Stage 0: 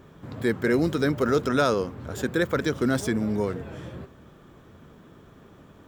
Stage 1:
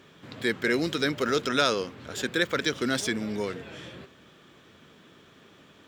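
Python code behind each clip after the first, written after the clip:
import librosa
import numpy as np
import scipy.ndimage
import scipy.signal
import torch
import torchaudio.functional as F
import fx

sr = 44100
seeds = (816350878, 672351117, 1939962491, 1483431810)

y = fx.weighting(x, sr, curve='D')
y = y * 10.0 ** (-3.5 / 20.0)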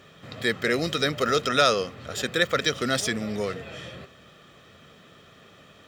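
y = x + 0.47 * np.pad(x, (int(1.6 * sr / 1000.0), 0))[:len(x)]
y = y * 10.0 ** (2.5 / 20.0)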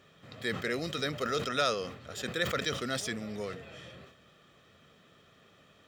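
y = fx.sustainer(x, sr, db_per_s=90.0)
y = y * 10.0 ** (-9.0 / 20.0)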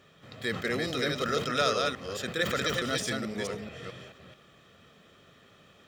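y = fx.reverse_delay(x, sr, ms=217, wet_db=-3.0)
y = y * 10.0 ** (1.5 / 20.0)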